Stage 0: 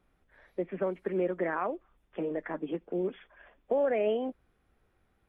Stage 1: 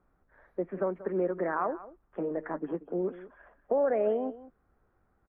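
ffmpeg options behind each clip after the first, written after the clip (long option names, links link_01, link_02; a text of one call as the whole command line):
ffmpeg -i in.wav -af "highshelf=frequency=2000:width_type=q:width=1.5:gain=-13,aecho=1:1:185:0.15" out.wav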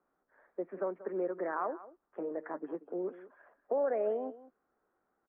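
ffmpeg -i in.wav -filter_complex "[0:a]acrossover=split=230 2500:gain=0.0708 1 0.224[link_01][link_02][link_03];[link_01][link_02][link_03]amix=inputs=3:normalize=0,volume=-4dB" out.wav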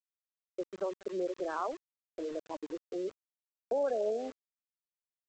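ffmpeg -i in.wav -af "afftfilt=real='re*gte(hypot(re,im),0.0251)':imag='im*gte(hypot(re,im),0.0251)':win_size=1024:overlap=0.75,aresample=16000,aeval=exprs='val(0)*gte(abs(val(0)),0.00501)':channel_layout=same,aresample=44100" out.wav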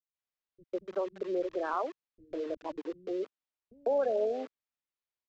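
ffmpeg -i in.wav -filter_complex "[0:a]lowpass=4000,acrossover=split=180[link_01][link_02];[link_02]adelay=150[link_03];[link_01][link_03]amix=inputs=2:normalize=0,volume=2.5dB" out.wav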